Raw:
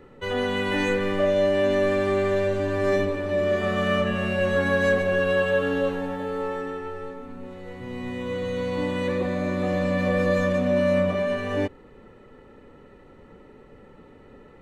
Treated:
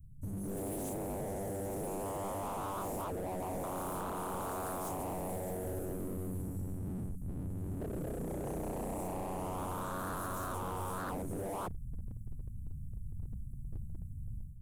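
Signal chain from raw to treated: inverse Chebyshev band-stop 400–3800 Hz, stop band 60 dB; dynamic bell 290 Hz, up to -7 dB, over -54 dBFS, Q 0.99; level rider gain up to 11 dB; wavefolder -38 dBFS; trim +4.5 dB

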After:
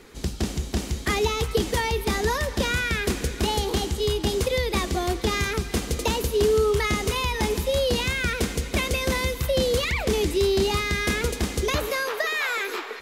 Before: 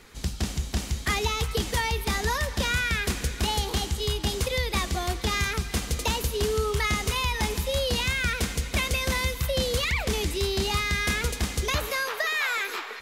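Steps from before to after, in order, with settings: peaking EQ 360 Hz +8.5 dB 1.5 oct

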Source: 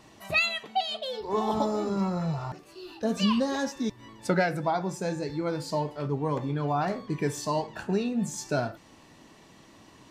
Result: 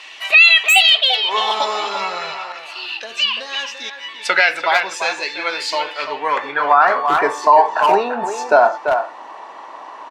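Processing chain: high-pass 450 Hz 12 dB/octave; 2.32–3.98 s: compression 2.5:1, threshold -43 dBFS, peak gain reduction 11.5 dB; band-pass sweep 2.7 kHz -> 920 Hz, 5.84–7.36 s; speakerphone echo 340 ms, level -7 dB; loudness maximiser +28 dB; trim -1 dB

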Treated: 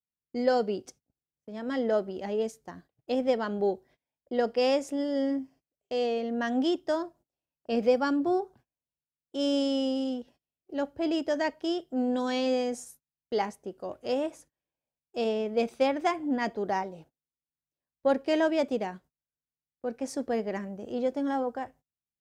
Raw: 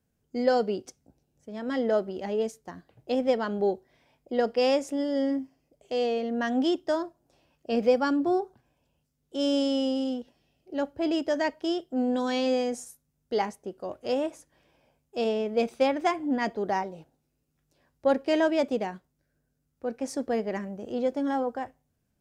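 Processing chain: gate -52 dBFS, range -27 dB; trim -1.5 dB

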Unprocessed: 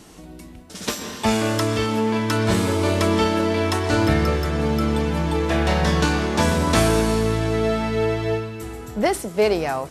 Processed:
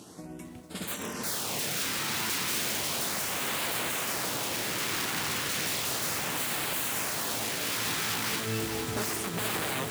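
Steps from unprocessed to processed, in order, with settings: CVSD coder 64 kbps; 5.57–6.65 s: bass shelf 270 Hz +2 dB; integer overflow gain 23 dB; LFO notch sine 0.34 Hz 570–5900 Hz; peak limiter -26 dBFS, peak gain reduction 7.5 dB; expander -33 dBFS; upward compressor, threshold -38 dBFS; high-pass 87 Hz 24 dB/octave; bit-crushed delay 452 ms, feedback 80%, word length 10-bit, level -7.5 dB; trim +2.5 dB

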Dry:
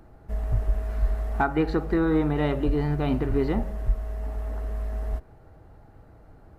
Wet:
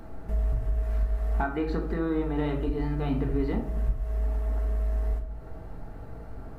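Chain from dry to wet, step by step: compression 2.5:1, threshold -41 dBFS, peak gain reduction 16 dB; simulated room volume 510 m³, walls furnished, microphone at 1.6 m; trim +6 dB

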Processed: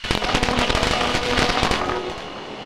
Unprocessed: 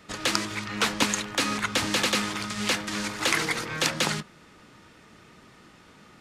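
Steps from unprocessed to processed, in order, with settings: compression 3:1, threshold -39 dBFS, peak gain reduction 15.5 dB; speed mistake 33 rpm record played at 78 rpm; doubling 24 ms -6.5 dB; three bands offset in time highs, mids, lows 180/290 ms, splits 420/1600 Hz; Chebyshev shaper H 3 -18 dB, 6 -8 dB, 8 -21 dB, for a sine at -18 dBFS; low-pass 2.7 kHz 12 dB/octave; feedback comb 210 Hz, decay 1.6 s, mix 70%; on a send: delay 467 ms -15.5 dB; on the sum: loudness maximiser +35.5 dB; loudspeaker Doppler distortion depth 0.57 ms

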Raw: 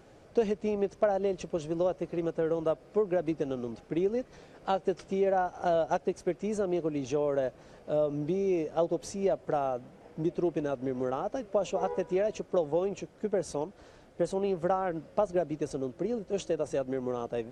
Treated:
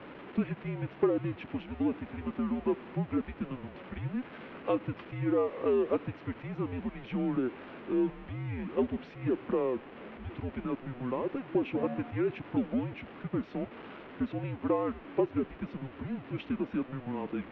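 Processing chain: jump at every zero crossing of -39 dBFS; mistuned SSB -260 Hz 490–3200 Hz

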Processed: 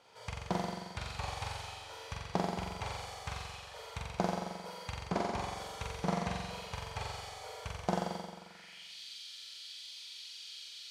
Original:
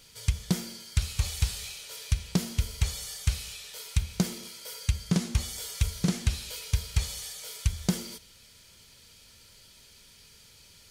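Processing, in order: band-pass sweep 800 Hz -> 3.7 kHz, 8.23–8.93 s; flutter echo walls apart 7.6 m, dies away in 1.3 s; trim +8.5 dB

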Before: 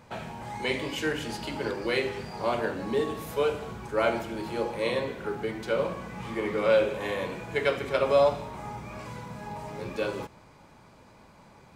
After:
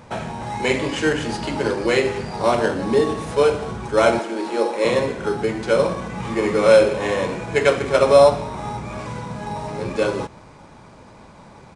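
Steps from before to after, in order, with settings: 4.19–4.85 s: steep high-pass 240 Hz 36 dB/octave; in parallel at -6 dB: sample-rate reducer 4.7 kHz, jitter 0%; on the sum: resampled via 22.05 kHz; trim +6.5 dB

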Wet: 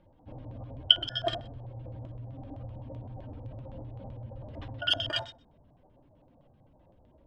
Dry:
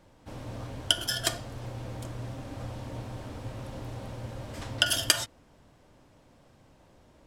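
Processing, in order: spectral contrast enhancement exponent 1.7; flutter echo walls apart 10.7 m, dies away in 0.33 s; LFO low-pass square 7.8 Hz 800–3200 Hz; trim -3 dB

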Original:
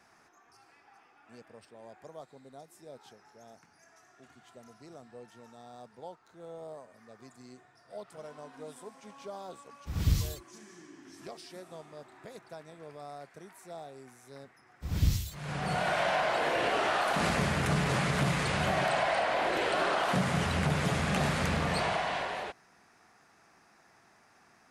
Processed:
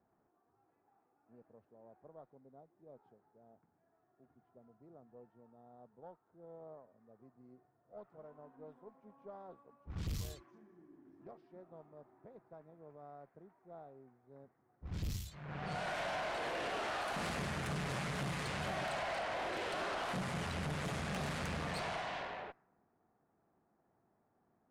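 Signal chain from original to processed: level-controlled noise filter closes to 580 Hz, open at -25.5 dBFS; valve stage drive 28 dB, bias 0.5; trim -6 dB

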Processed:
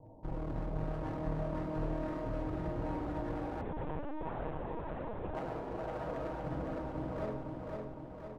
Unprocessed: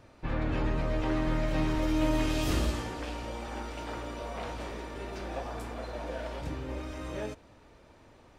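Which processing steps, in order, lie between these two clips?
steep low-pass 990 Hz 96 dB/octave; hum notches 60/120/180/240/300/360/420 Hz; peak limiter -28 dBFS, peak gain reduction 9.5 dB; one-sided clip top -49.5 dBFS, bottom -32 dBFS; feedback delay 510 ms, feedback 56%, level -3.5 dB; on a send at -3 dB: reverberation RT60 0.70 s, pre-delay 6 ms; 3.61–5.35 s: on the sum: LPC vocoder at 8 kHz pitch kept

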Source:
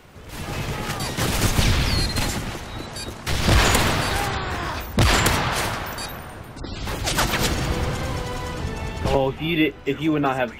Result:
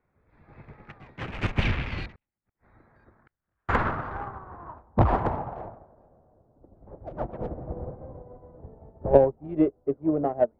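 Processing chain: local Wiener filter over 15 samples; 2.14–3.69 s: inverted gate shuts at -20 dBFS, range -41 dB; low-pass sweep 2.5 kHz -> 620 Hz, 2.13–6.05 s; in parallel at -9 dB: saturation -13.5 dBFS, distortion -14 dB; on the sum: upward expansion 2.5:1, over -28 dBFS; trim -1 dB

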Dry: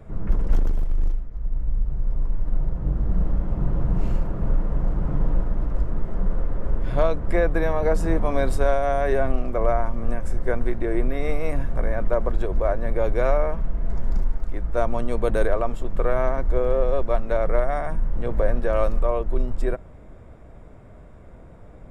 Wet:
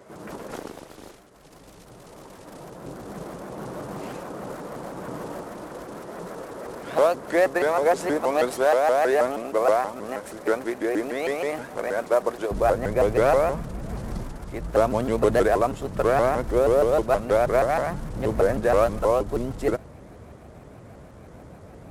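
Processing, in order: CVSD coder 64 kbps; high-pass 370 Hz 12 dB/octave, from 12.51 s 86 Hz; vibrato with a chosen wave saw up 6.3 Hz, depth 250 cents; trim +4 dB

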